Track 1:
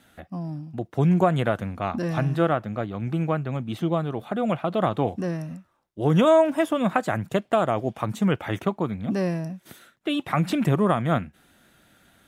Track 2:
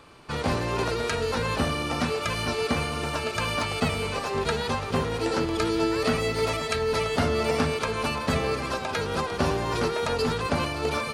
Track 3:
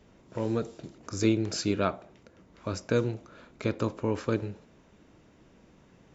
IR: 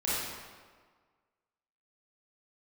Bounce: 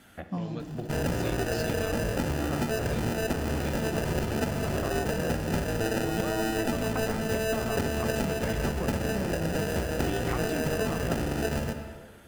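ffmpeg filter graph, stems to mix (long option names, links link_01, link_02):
-filter_complex "[0:a]acompressor=threshold=-29dB:ratio=6,volume=1dB,asplit=2[link_01][link_02];[link_02]volume=-15dB[link_03];[1:a]acrusher=samples=40:mix=1:aa=0.000001,adelay=600,volume=2.5dB,asplit=2[link_04][link_05];[link_05]volume=-17dB[link_06];[2:a]equalizer=frequency=3500:width_type=o:width=1.2:gain=14.5,volume=-11dB,asplit=2[link_07][link_08];[link_08]apad=whole_len=541116[link_09];[link_01][link_09]sidechaincompress=threshold=-42dB:ratio=8:attack=16:release=834[link_10];[3:a]atrim=start_sample=2205[link_11];[link_03][link_06]amix=inputs=2:normalize=0[link_12];[link_12][link_11]afir=irnorm=-1:irlink=0[link_13];[link_10][link_04][link_07][link_13]amix=inputs=4:normalize=0,bandreject=frequency=3800:width=8.3,acompressor=threshold=-25dB:ratio=6"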